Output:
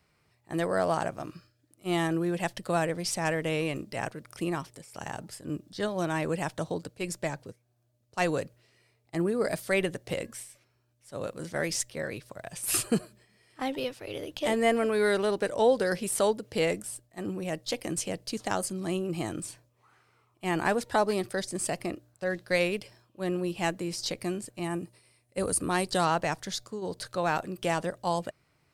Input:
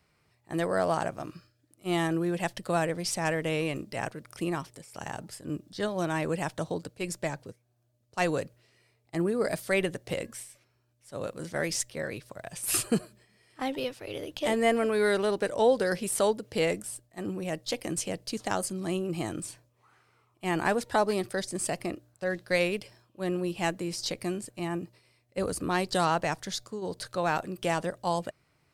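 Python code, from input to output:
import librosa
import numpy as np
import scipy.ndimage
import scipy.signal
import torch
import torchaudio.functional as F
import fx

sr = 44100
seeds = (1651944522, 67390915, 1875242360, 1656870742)

y = fx.peak_eq(x, sr, hz=9400.0, db=13.5, octaves=0.36, at=(24.64, 25.92))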